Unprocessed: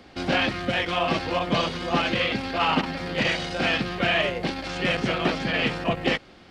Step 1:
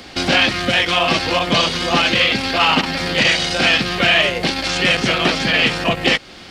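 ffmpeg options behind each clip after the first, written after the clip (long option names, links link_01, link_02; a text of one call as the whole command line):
ffmpeg -i in.wav -filter_complex "[0:a]highshelf=frequency=2400:gain=11.5,asplit=2[link_01][link_02];[link_02]acompressor=threshold=-28dB:ratio=6,volume=2dB[link_03];[link_01][link_03]amix=inputs=2:normalize=0,volume=2dB" out.wav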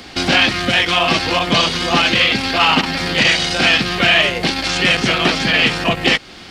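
ffmpeg -i in.wav -af "equalizer=frequency=550:width_type=o:width=0.3:gain=-4,volume=1.5dB" out.wav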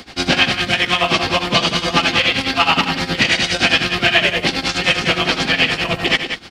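ffmpeg -i in.wav -af "tremolo=f=9.6:d=0.86,aecho=1:1:78.72|186.6:0.282|0.398,volume=1.5dB" out.wav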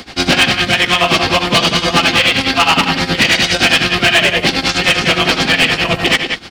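ffmpeg -i in.wav -af "asoftclip=type=hard:threshold=-10.5dB,volume=5dB" out.wav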